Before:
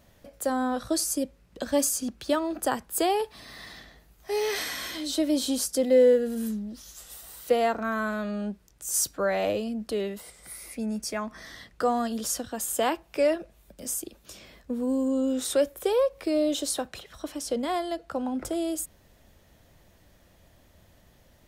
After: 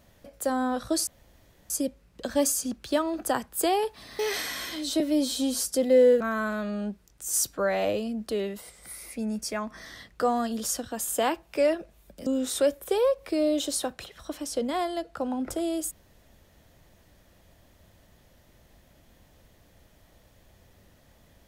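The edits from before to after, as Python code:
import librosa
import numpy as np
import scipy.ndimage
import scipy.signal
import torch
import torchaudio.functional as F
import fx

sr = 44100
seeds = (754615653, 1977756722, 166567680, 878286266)

y = fx.edit(x, sr, fx.insert_room_tone(at_s=1.07, length_s=0.63),
    fx.cut(start_s=3.56, length_s=0.85),
    fx.stretch_span(start_s=5.22, length_s=0.43, factor=1.5),
    fx.cut(start_s=6.21, length_s=1.6),
    fx.cut(start_s=13.87, length_s=1.34), tone=tone)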